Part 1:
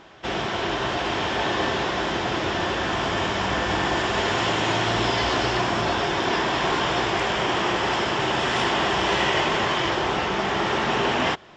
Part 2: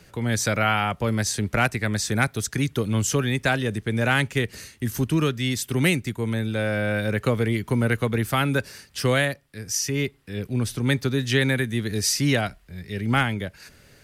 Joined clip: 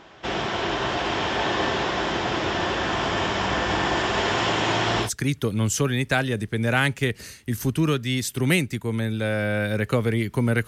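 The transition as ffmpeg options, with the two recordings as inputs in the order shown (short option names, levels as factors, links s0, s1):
-filter_complex "[0:a]apad=whole_dur=10.67,atrim=end=10.67,atrim=end=5.1,asetpts=PTS-STARTPTS[s0];[1:a]atrim=start=2.34:end=8.01,asetpts=PTS-STARTPTS[s1];[s0][s1]acrossfade=d=0.1:c1=tri:c2=tri"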